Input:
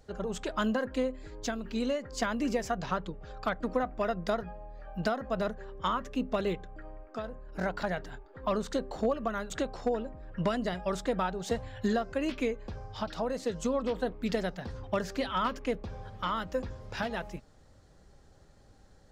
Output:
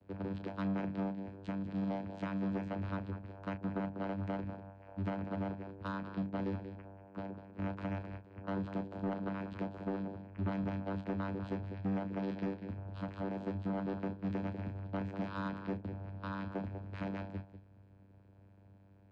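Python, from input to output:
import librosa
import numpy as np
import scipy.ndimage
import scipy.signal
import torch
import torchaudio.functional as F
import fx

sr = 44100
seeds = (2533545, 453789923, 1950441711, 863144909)

p1 = (np.mod(10.0 ** (32.5 / 20.0) * x + 1.0, 2.0) - 1.0) / 10.0 ** (32.5 / 20.0)
p2 = x + (p1 * librosa.db_to_amplitude(-7.5))
p3 = scipy.signal.sosfilt(scipy.signal.butter(4, 3500.0, 'lowpass', fs=sr, output='sos'), p2)
p4 = p3 + fx.echo_single(p3, sr, ms=194, db=-12.0, dry=0)
p5 = fx.vocoder(p4, sr, bands=8, carrier='saw', carrier_hz=97.5)
p6 = fx.peak_eq(p5, sr, hz=810.0, db=-8.5, octaves=0.21)
p7 = fx.doubler(p6, sr, ms=32.0, db=-10.0)
p8 = 10.0 ** (-28.0 / 20.0) * np.tanh(p7 / 10.0 ** (-28.0 / 20.0))
y = p8 * librosa.db_to_amplitude(-2.5)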